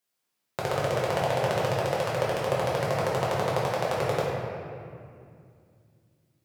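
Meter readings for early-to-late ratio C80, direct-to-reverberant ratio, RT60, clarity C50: 0.0 dB, −6.5 dB, 2.4 s, −1.5 dB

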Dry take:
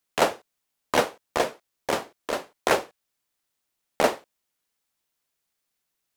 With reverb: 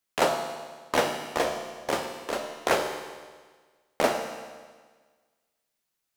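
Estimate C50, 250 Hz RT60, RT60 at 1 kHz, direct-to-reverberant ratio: 5.0 dB, 1.5 s, 1.5 s, 3.0 dB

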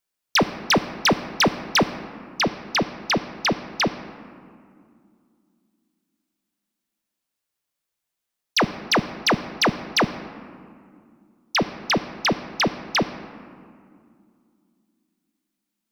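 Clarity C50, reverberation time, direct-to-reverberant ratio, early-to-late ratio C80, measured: 13.0 dB, 2.3 s, 11.0 dB, 13.5 dB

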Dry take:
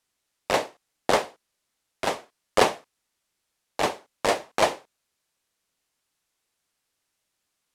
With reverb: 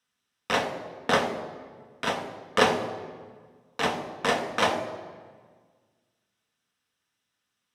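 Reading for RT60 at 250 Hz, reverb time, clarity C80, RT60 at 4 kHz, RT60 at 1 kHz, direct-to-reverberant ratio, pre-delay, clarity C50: 2.0 s, 1.6 s, 10.5 dB, 1.1 s, 1.5 s, 4.0 dB, 3 ms, 9.5 dB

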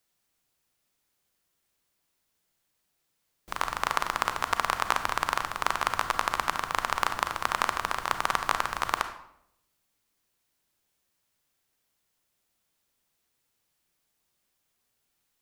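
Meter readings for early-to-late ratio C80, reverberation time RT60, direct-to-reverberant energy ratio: 13.0 dB, 0.75 s, 8.5 dB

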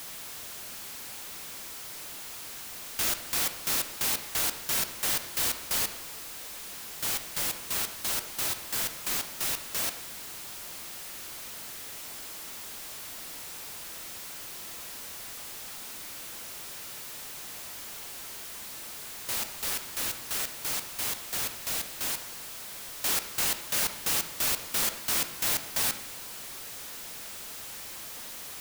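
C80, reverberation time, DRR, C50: 13.0 dB, 1.0 s, 9.0 dB, 10.5 dB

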